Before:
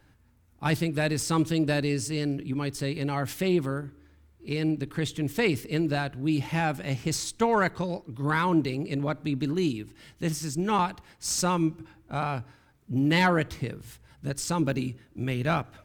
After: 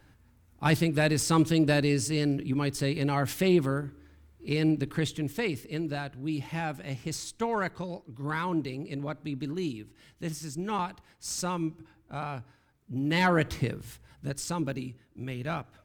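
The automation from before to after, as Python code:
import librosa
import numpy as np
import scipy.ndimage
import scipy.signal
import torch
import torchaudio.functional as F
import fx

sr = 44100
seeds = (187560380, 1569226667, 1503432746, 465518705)

y = fx.gain(x, sr, db=fx.line((4.92, 1.5), (5.48, -6.0), (13.02, -6.0), (13.56, 3.5), (14.87, -7.0)))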